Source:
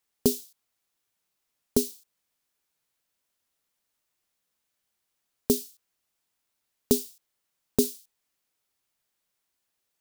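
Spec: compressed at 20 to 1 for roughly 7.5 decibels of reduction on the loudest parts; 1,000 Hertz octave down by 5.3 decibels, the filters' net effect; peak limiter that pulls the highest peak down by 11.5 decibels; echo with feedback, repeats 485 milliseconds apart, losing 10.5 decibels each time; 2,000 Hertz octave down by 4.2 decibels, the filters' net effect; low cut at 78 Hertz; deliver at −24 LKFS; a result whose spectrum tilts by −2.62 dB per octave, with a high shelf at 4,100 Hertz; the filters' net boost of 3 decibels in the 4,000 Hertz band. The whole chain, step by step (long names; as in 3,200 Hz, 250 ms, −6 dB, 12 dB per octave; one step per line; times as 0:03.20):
high-pass filter 78 Hz
parametric band 1,000 Hz −6.5 dB
parametric band 2,000 Hz −6.5 dB
parametric band 4,000 Hz +8.5 dB
high-shelf EQ 4,100 Hz −5 dB
downward compressor 20 to 1, threshold −25 dBFS
brickwall limiter −22 dBFS
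repeating echo 485 ms, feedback 30%, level −10.5 dB
level +20.5 dB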